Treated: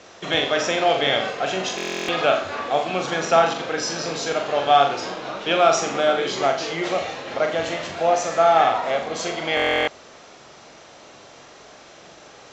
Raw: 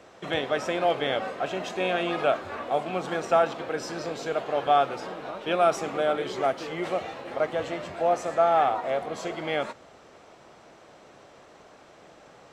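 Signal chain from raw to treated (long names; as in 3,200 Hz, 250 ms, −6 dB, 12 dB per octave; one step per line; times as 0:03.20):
Butterworth low-pass 7,300 Hz 96 dB per octave
high-shelf EQ 2,800 Hz +12 dB
on a send: flutter between parallel walls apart 7.3 metres, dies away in 0.44 s
on the sum: buffer that repeats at 0:01.76/0:09.55, samples 1,024, times 13
level +3 dB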